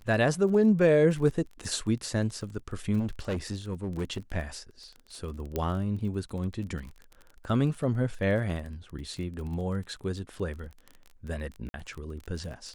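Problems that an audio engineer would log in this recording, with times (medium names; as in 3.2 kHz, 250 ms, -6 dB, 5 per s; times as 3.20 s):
crackle 26 per s -36 dBFS
2.99–4.37 s: clipped -26.5 dBFS
5.56 s: pop -16 dBFS
8.50 s: dropout 2.5 ms
11.69–11.74 s: dropout 50 ms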